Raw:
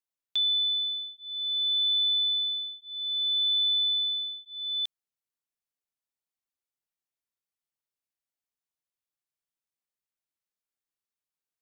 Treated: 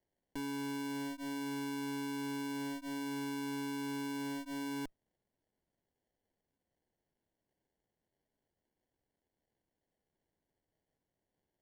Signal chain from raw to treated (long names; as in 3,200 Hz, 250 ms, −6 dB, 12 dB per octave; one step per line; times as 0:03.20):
tube saturation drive 47 dB, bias 0.65
decimation without filtering 35×
level +8.5 dB